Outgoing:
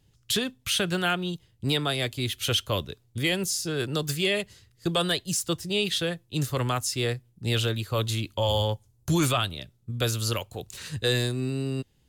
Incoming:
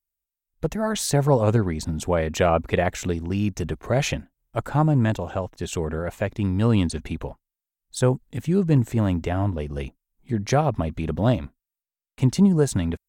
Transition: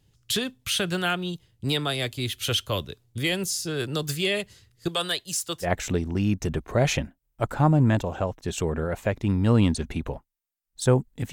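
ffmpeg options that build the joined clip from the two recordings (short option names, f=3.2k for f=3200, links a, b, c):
-filter_complex "[0:a]asettb=1/sr,asplit=3[a][b][c];[a]atrim=end=4.884[d];[b]atrim=start=4.88:end=5.72,asetpts=PTS-STARTPTS,afade=t=in:d=0.004:c=qsin,afade=t=out:st=0.836:d=0.004:c=qsin,lowshelf=f=350:g=-11.5[e];[c]atrim=start=5.716[f];[d][e]acrossfade=d=0.004:c1=hsin:c2=qsin[g];[g][f]acrossfade=d=0.004:c1=qsin:c2=hsin,apad=whole_dur=11.32,atrim=end=11.32,atrim=end=5.72,asetpts=PTS-STARTPTS[h];[1:a]atrim=start=2.75:end=8.47,asetpts=PTS-STARTPTS[i];[h][i]acrossfade=d=0.12:c1=tri:c2=tri"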